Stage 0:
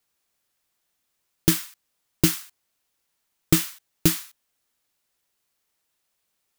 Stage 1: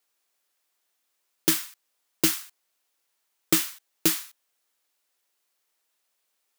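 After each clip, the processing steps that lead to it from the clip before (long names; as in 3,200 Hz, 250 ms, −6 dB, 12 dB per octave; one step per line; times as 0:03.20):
high-pass filter 340 Hz 12 dB per octave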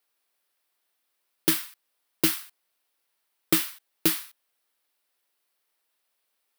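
parametric band 6,800 Hz −8 dB 0.49 octaves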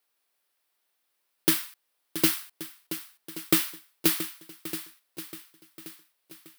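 feedback echo with a long and a short gap by turns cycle 1,128 ms, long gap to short 1.5 to 1, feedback 35%, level −12 dB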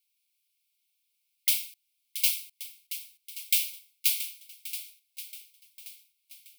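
linear-phase brick-wall high-pass 2,100 Hz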